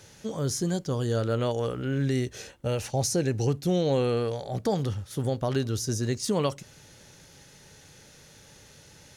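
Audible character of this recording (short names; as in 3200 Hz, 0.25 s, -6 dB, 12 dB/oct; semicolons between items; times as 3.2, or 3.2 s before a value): noise floor -53 dBFS; spectral tilt -5.5 dB/oct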